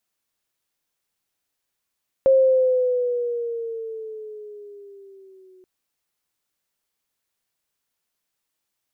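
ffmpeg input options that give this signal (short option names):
-f lavfi -i "aevalsrc='pow(10,(-11-37*t/3.38)/20)*sin(2*PI*536*3.38/(-6.5*log(2)/12)*(exp(-6.5*log(2)/12*t/3.38)-1))':d=3.38:s=44100"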